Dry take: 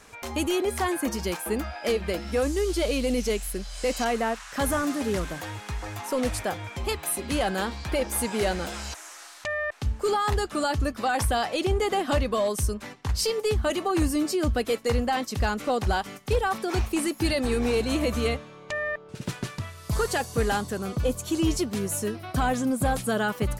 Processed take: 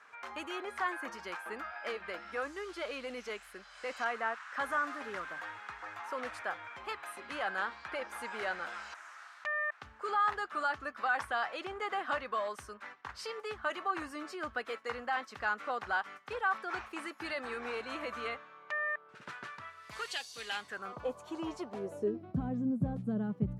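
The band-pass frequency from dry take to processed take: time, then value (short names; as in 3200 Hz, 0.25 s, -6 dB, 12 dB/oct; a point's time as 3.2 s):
band-pass, Q 2.1
19.78 s 1400 Hz
20.3 s 4500 Hz
20.99 s 920 Hz
21.64 s 920 Hz
22.42 s 170 Hz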